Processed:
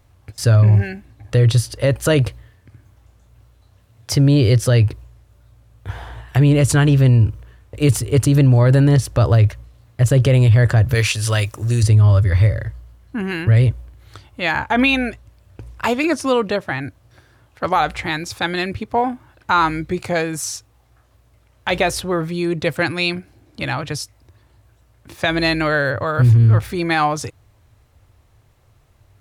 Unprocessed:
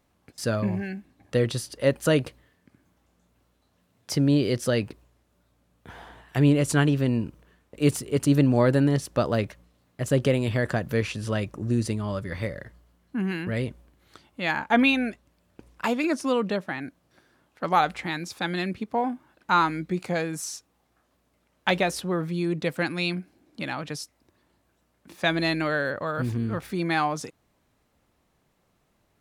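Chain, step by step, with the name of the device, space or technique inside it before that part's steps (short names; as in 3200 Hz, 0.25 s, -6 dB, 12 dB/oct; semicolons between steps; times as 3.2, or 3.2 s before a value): 10.94–11.83 tilt +3.5 dB/oct; car stereo with a boomy subwoofer (resonant low shelf 140 Hz +9 dB, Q 3; limiter -14.5 dBFS, peak gain reduction 7.5 dB); gain +8.5 dB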